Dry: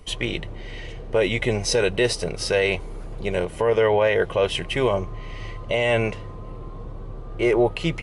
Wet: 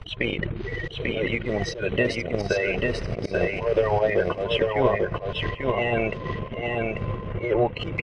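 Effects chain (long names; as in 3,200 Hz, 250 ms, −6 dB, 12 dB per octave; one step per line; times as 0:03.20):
spectral magnitudes quantised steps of 30 dB
brickwall limiter −20.5 dBFS, peak gain reduction 11.5 dB
feedback delay with all-pass diffusion 918 ms, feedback 43%, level −14.5 dB
transient designer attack +12 dB, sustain −10 dB
low-shelf EQ 74 Hz −6.5 dB
volume swells 147 ms
low-pass filter 2,800 Hz 12 dB per octave
single-tap delay 842 ms −3 dB
level +6 dB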